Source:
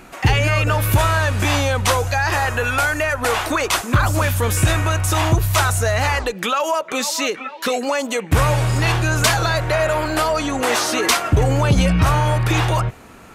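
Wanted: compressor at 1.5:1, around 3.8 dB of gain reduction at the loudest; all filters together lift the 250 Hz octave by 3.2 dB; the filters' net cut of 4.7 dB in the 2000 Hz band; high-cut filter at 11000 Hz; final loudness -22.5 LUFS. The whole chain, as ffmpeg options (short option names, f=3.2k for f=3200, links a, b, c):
-af "lowpass=11k,equalizer=f=250:t=o:g=4.5,equalizer=f=2k:t=o:g=-6.5,acompressor=threshold=-20dB:ratio=1.5,volume=-1.5dB"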